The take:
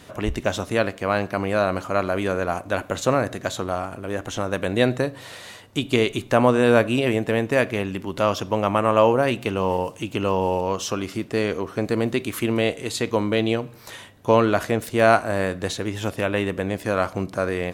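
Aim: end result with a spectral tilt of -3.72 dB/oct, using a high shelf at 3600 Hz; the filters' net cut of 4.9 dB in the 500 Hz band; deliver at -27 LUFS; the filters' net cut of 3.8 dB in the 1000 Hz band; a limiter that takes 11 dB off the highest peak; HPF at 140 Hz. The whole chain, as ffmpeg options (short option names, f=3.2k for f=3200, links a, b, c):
-af "highpass=140,equalizer=f=500:t=o:g=-5,equalizer=f=1k:t=o:g=-4,highshelf=f=3.6k:g=7.5,volume=1dB,alimiter=limit=-12dB:level=0:latency=1"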